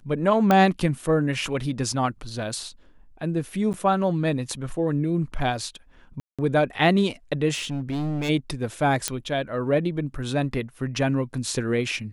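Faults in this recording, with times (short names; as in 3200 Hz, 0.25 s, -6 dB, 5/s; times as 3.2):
0.51 pop -7 dBFS
3.73–3.74 gap 9.3 ms
6.2–6.39 gap 0.186 s
7.54–8.3 clipped -24 dBFS
9.08 pop -6 dBFS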